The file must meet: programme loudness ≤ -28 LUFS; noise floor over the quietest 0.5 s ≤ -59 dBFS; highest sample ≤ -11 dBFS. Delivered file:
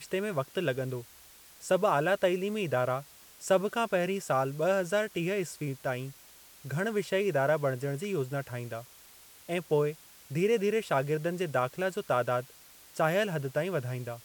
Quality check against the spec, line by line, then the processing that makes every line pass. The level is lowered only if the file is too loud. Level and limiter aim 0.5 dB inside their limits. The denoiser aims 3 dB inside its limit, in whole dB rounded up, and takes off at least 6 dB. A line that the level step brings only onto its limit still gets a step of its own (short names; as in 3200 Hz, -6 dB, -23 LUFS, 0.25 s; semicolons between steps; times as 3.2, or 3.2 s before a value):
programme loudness -30.5 LUFS: OK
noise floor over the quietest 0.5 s -55 dBFS: fail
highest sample -14.0 dBFS: OK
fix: denoiser 7 dB, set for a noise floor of -55 dBFS